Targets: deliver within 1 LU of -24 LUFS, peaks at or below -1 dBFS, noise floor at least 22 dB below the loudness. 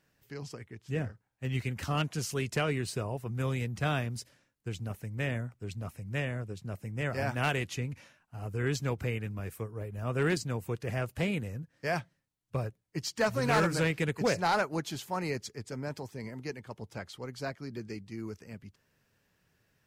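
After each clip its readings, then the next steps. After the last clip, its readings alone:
clipped 0.3%; flat tops at -21.0 dBFS; loudness -34.0 LUFS; peak -21.0 dBFS; loudness target -24.0 LUFS
-> clip repair -21 dBFS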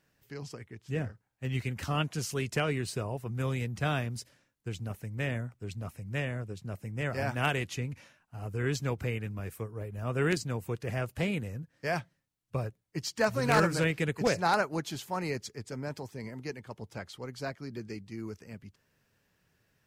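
clipped 0.0%; loudness -33.5 LUFS; peak -12.0 dBFS; loudness target -24.0 LUFS
-> gain +9.5 dB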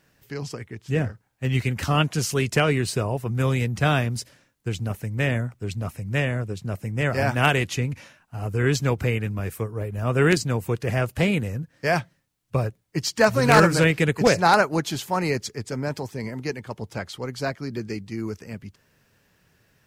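loudness -24.0 LUFS; peak -2.5 dBFS; noise floor -66 dBFS

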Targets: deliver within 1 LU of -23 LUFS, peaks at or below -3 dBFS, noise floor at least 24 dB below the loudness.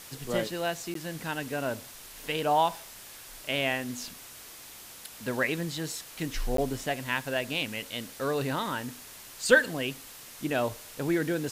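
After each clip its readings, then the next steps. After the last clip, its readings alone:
dropouts 2; longest dropout 13 ms; noise floor -47 dBFS; noise floor target -55 dBFS; loudness -30.5 LUFS; peak -6.0 dBFS; loudness target -23.0 LUFS
-> interpolate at 0.94/6.57, 13 ms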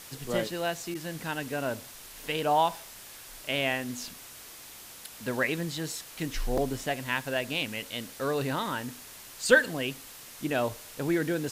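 dropouts 0; noise floor -47 dBFS; noise floor target -55 dBFS
-> denoiser 8 dB, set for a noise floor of -47 dBFS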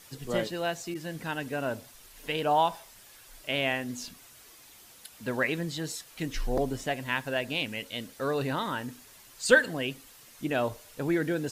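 noise floor -54 dBFS; noise floor target -55 dBFS
-> denoiser 6 dB, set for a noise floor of -54 dBFS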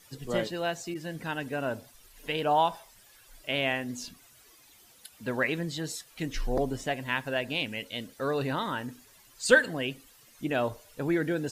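noise floor -58 dBFS; loudness -30.5 LUFS; peak -6.0 dBFS; loudness target -23.0 LUFS
-> gain +7.5 dB; limiter -3 dBFS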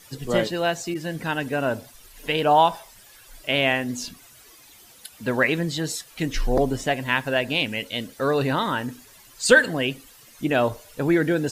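loudness -23.5 LUFS; peak -3.0 dBFS; noise floor -50 dBFS

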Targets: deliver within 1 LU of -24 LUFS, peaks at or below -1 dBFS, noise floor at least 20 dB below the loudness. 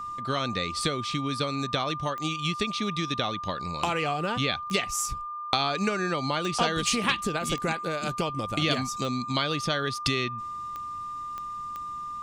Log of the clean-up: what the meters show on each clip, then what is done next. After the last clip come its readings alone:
clicks 8; steady tone 1200 Hz; tone level -33 dBFS; loudness -28.5 LUFS; peak -4.5 dBFS; loudness target -24.0 LUFS
-> de-click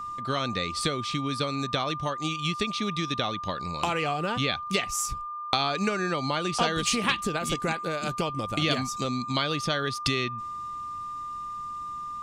clicks 0; steady tone 1200 Hz; tone level -33 dBFS
-> notch 1200 Hz, Q 30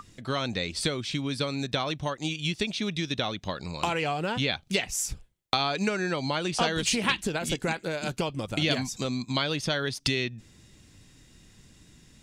steady tone none; loudness -29.0 LUFS; peak -4.5 dBFS; loudness target -24.0 LUFS
-> gain +5 dB; limiter -1 dBFS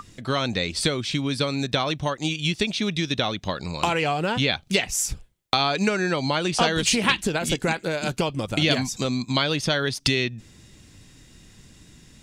loudness -24.0 LUFS; peak -1.0 dBFS; noise floor -52 dBFS

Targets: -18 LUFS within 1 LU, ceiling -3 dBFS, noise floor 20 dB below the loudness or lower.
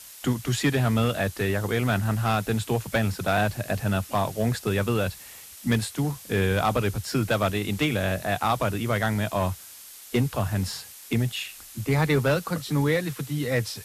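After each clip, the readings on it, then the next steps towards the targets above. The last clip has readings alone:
clipped 0.7%; flat tops at -15.5 dBFS; noise floor -45 dBFS; noise floor target -46 dBFS; loudness -26.0 LUFS; peak -15.5 dBFS; loudness target -18.0 LUFS
-> clip repair -15.5 dBFS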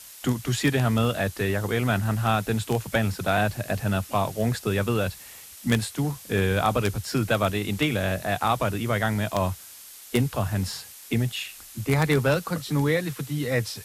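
clipped 0.0%; noise floor -45 dBFS; noise floor target -46 dBFS
-> noise print and reduce 6 dB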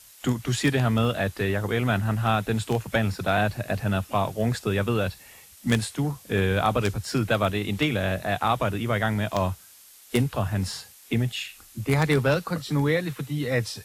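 noise floor -51 dBFS; loudness -25.5 LUFS; peak -6.5 dBFS; loudness target -18.0 LUFS
-> gain +7.5 dB; limiter -3 dBFS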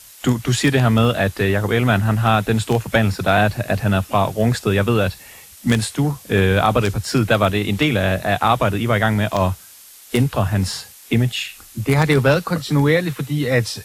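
loudness -18.5 LUFS; peak -3.0 dBFS; noise floor -43 dBFS

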